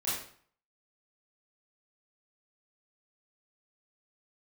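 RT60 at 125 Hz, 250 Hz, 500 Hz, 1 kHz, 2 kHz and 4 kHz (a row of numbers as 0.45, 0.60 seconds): 0.55, 0.50, 0.50, 0.55, 0.50, 0.45 seconds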